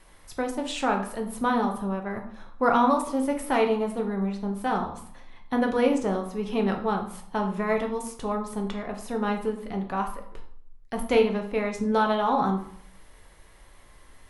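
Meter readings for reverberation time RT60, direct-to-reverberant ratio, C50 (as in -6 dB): 0.60 s, 2.5 dB, 8.5 dB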